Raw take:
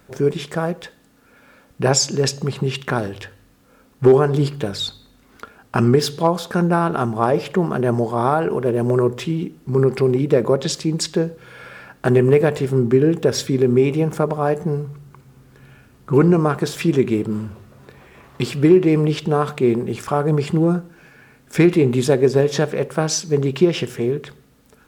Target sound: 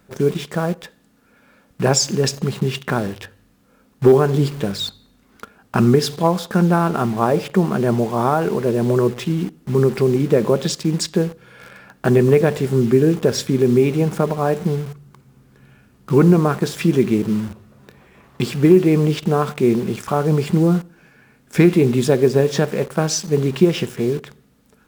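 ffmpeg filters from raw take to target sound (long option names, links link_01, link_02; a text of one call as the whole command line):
ffmpeg -i in.wav -filter_complex "[0:a]equalizer=frequency=200:width_type=o:width=0.45:gain=6,asplit=2[link_01][link_02];[link_02]acrusher=bits=4:mix=0:aa=0.000001,volume=-5dB[link_03];[link_01][link_03]amix=inputs=2:normalize=0,volume=-4dB" out.wav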